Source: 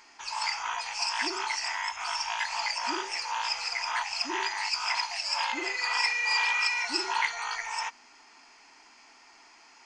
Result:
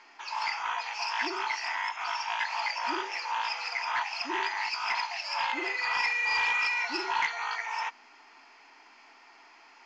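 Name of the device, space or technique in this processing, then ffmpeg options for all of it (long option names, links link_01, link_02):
telephone: -af "highpass=270,lowpass=3600,asoftclip=type=tanh:threshold=-20dB,volume=1.5dB" -ar 16000 -c:a pcm_mulaw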